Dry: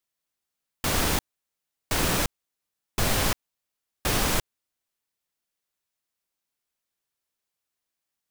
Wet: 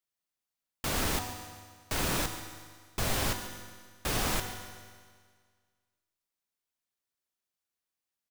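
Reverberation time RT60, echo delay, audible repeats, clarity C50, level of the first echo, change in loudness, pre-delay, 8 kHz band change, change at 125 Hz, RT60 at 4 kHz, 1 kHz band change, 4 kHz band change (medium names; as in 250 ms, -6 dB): 1.8 s, 140 ms, 1, 7.0 dB, -16.0 dB, -6.5 dB, 4 ms, -5.5 dB, -5.5 dB, 1.7 s, -5.0 dB, -5.5 dB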